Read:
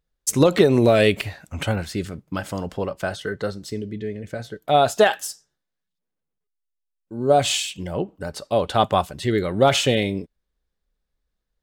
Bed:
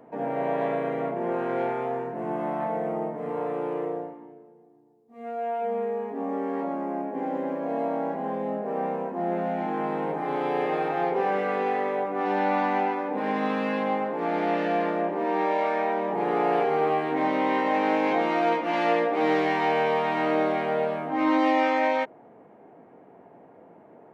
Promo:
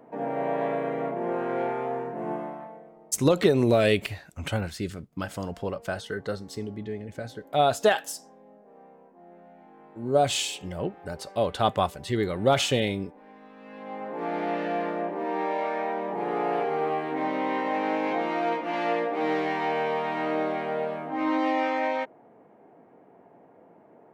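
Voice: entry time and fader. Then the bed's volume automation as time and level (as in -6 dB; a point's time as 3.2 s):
2.85 s, -5.0 dB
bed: 2.32 s -1 dB
2.95 s -23.5 dB
13.52 s -23.5 dB
14.18 s -3.5 dB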